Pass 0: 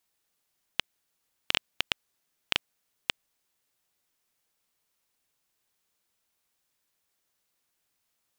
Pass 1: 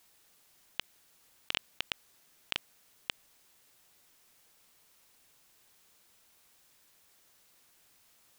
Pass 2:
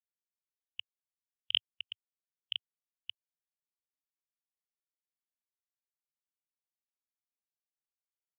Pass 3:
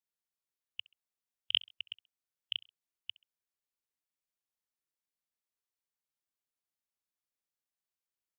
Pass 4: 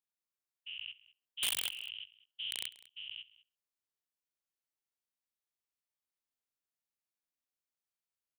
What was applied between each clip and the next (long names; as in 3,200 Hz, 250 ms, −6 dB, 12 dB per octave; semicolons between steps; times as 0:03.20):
compressor whose output falls as the input rises −37 dBFS, ratio −1; level +3 dB
parametric band 100 Hz +7.5 dB 0.49 octaves; pitch vibrato 2.1 Hz 56 cents; every bin expanded away from the loudest bin 4 to 1; level +2.5 dB
repeating echo 66 ms, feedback 34%, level −22.5 dB
every bin's largest magnitude spread in time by 240 ms; wrap-around overflow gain 16.5 dB; single-tap delay 201 ms −20.5 dB; level −9 dB